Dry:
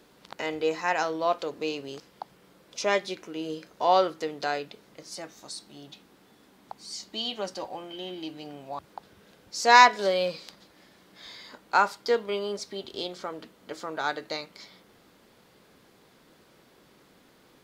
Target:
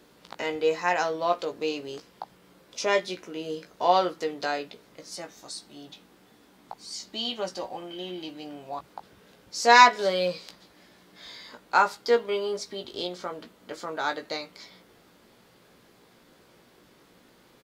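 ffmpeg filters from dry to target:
-filter_complex "[0:a]asplit=2[s0][s1];[s1]adelay=17,volume=0.473[s2];[s0][s2]amix=inputs=2:normalize=0"

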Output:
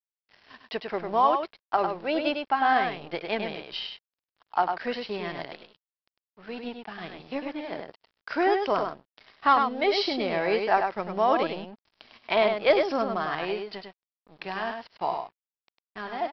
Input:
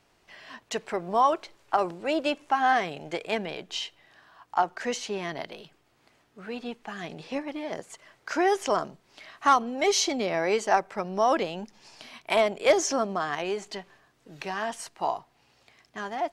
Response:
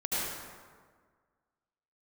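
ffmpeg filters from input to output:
-af "aresample=11025,aeval=exprs='sgn(val(0))*max(abs(val(0))-0.00473,0)':c=same,aresample=44100,aecho=1:1:101:0.531"

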